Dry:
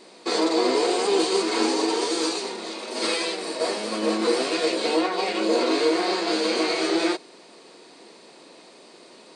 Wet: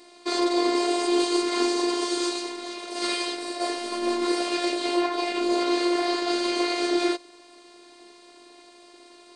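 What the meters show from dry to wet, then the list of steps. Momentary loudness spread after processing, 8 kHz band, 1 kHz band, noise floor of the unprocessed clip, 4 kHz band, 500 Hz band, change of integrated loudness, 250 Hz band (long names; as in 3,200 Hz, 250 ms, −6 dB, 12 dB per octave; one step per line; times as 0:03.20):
7 LU, −2.5 dB, −1.0 dB, −50 dBFS, −2.0 dB, −3.0 dB, −2.0 dB, +0.5 dB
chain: phases set to zero 349 Hz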